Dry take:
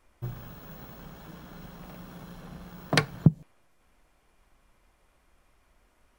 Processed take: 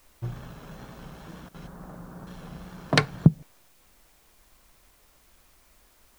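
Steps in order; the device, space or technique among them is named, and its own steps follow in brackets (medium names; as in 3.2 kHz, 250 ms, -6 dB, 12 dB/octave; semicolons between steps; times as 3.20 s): 1.67–2.27 s: inverse Chebyshev low-pass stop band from 5.3 kHz, stop band 60 dB; worn cassette (low-pass 8.9 kHz 12 dB/octave; wow and flutter; level dips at 1.49 s, 52 ms -16 dB; white noise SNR 31 dB); trim +2.5 dB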